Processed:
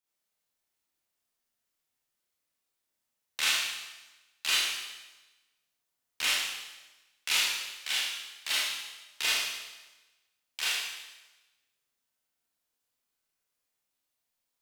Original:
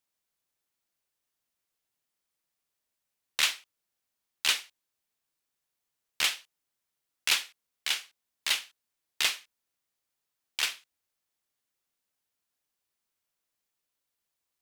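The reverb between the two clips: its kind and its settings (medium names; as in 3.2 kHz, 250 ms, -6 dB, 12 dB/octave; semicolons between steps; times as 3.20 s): Schroeder reverb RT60 1.1 s, combs from 25 ms, DRR -7.5 dB; trim -7 dB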